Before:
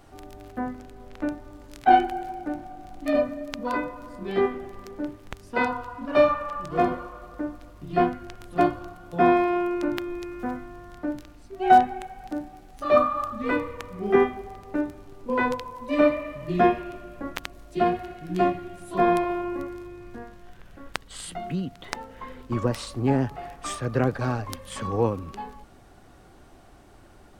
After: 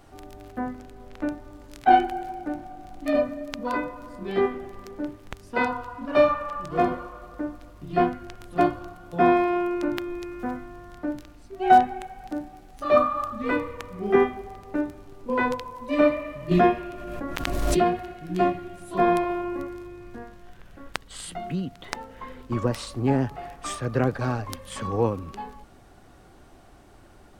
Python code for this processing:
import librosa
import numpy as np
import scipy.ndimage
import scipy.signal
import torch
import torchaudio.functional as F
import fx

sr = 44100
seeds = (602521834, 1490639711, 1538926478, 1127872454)

y = fx.pre_swell(x, sr, db_per_s=28.0, at=(16.51, 18.11))